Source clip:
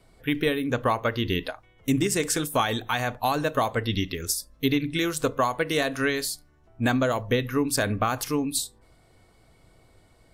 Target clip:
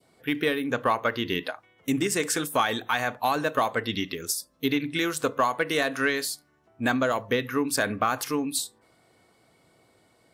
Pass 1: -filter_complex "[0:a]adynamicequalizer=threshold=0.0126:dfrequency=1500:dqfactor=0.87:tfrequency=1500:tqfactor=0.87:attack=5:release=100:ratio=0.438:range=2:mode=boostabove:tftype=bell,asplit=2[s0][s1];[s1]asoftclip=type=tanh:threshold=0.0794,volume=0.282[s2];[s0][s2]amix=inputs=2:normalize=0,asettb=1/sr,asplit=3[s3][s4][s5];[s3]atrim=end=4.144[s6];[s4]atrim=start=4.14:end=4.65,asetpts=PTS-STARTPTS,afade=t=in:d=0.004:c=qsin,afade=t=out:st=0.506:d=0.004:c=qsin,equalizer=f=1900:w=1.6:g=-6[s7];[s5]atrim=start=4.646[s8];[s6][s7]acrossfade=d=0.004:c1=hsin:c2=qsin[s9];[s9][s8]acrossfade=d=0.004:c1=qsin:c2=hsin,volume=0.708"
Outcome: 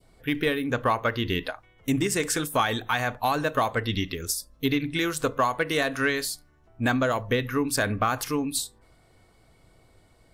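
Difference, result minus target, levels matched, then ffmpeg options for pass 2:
125 Hz band +5.5 dB
-filter_complex "[0:a]adynamicequalizer=threshold=0.0126:dfrequency=1500:dqfactor=0.87:tfrequency=1500:tqfactor=0.87:attack=5:release=100:ratio=0.438:range=2:mode=boostabove:tftype=bell,highpass=170,asplit=2[s0][s1];[s1]asoftclip=type=tanh:threshold=0.0794,volume=0.282[s2];[s0][s2]amix=inputs=2:normalize=0,asettb=1/sr,asplit=3[s3][s4][s5];[s3]atrim=end=4.144[s6];[s4]atrim=start=4.14:end=4.65,asetpts=PTS-STARTPTS,afade=t=in:d=0.004:c=qsin,afade=t=out:st=0.506:d=0.004:c=qsin,equalizer=f=1900:w=1.6:g=-6[s7];[s5]atrim=start=4.646[s8];[s6][s7]acrossfade=d=0.004:c1=hsin:c2=qsin[s9];[s9][s8]acrossfade=d=0.004:c1=qsin:c2=hsin,volume=0.708"

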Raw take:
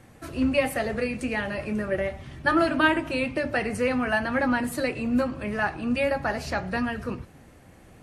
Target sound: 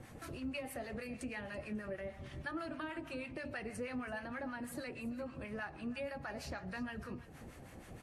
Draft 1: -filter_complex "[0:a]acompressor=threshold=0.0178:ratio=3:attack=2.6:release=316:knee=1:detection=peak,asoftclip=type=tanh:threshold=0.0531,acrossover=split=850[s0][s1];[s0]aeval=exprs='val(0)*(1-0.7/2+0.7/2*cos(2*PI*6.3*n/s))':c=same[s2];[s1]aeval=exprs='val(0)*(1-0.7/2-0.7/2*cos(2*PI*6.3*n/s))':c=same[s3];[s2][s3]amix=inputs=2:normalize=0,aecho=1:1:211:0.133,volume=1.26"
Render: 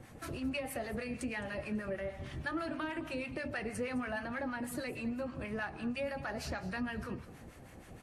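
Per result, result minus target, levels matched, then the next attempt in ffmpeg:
echo 121 ms early; compression: peak gain reduction -5 dB
-filter_complex "[0:a]acompressor=threshold=0.0178:ratio=3:attack=2.6:release=316:knee=1:detection=peak,asoftclip=type=tanh:threshold=0.0531,acrossover=split=850[s0][s1];[s0]aeval=exprs='val(0)*(1-0.7/2+0.7/2*cos(2*PI*6.3*n/s))':c=same[s2];[s1]aeval=exprs='val(0)*(1-0.7/2-0.7/2*cos(2*PI*6.3*n/s))':c=same[s3];[s2][s3]amix=inputs=2:normalize=0,aecho=1:1:332:0.133,volume=1.26"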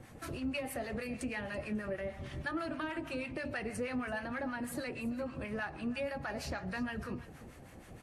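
compression: peak gain reduction -5 dB
-filter_complex "[0:a]acompressor=threshold=0.0075:ratio=3:attack=2.6:release=316:knee=1:detection=peak,asoftclip=type=tanh:threshold=0.0531,acrossover=split=850[s0][s1];[s0]aeval=exprs='val(0)*(1-0.7/2+0.7/2*cos(2*PI*6.3*n/s))':c=same[s2];[s1]aeval=exprs='val(0)*(1-0.7/2-0.7/2*cos(2*PI*6.3*n/s))':c=same[s3];[s2][s3]amix=inputs=2:normalize=0,aecho=1:1:332:0.133,volume=1.26"

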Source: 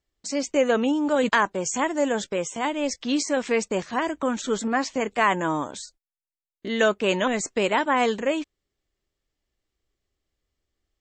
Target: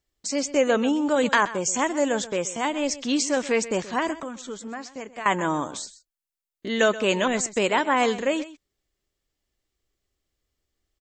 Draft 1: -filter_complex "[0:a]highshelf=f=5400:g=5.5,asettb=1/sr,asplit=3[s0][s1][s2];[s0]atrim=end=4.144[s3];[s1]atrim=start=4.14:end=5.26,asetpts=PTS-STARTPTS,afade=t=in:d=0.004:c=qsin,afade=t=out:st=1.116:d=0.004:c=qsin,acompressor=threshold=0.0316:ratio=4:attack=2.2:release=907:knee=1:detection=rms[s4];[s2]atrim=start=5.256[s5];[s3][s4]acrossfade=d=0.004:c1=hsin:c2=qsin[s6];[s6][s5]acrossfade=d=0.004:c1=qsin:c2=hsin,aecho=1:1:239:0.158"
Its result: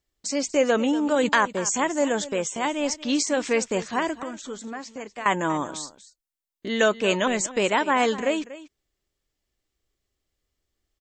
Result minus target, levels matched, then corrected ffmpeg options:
echo 111 ms late
-filter_complex "[0:a]highshelf=f=5400:g=5.5,asettb=1/sr,asplit=3[s0][s1][s2];[s0]atrim=end=4.144[s3];[s1]atrim=start=4.14:end=5.26,asetpts=PTS-STARTPTS,afade=t=in:d=0.004:c=qsin,afade=t=out:st=1.116:d=0.004:c=qsin,acompressor=threshold=0.0316:ratio=4:attack=2.2:release=907:knee=1:detection=rms[s4];[s2]atrim=start=5.256[s5];[s3][s4]acrossfade=d=0.004:c1=hsin:c2=qsin[s6];[s6][s5]acrossfade=d=0.004:c1=qsin:c2=hsin,aecho=1:1:128:0.158"

